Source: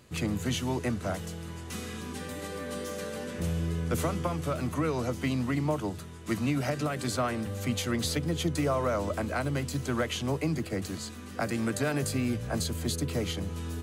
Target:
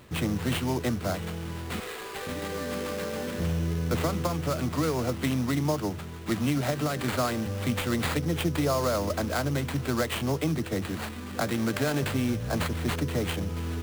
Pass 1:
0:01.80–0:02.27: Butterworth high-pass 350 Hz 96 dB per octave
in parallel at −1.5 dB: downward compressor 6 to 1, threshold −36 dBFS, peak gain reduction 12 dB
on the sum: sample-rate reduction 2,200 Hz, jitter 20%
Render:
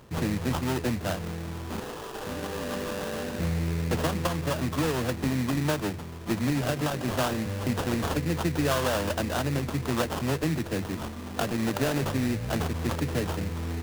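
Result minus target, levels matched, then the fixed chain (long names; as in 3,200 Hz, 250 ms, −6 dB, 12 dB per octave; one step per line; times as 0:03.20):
sample-rate reduction: distortion +5 dB
0:01.80–0:02.27: Butterworth high-pass 350 Hz 96 dB per octave
in parallel at −1.5 dB: downward compressor 6 to 1, threshold −36 dBFS, peak gain reduction 12 dB
on the sum: sample-rate reduction 5,800 Hz, jitter 20%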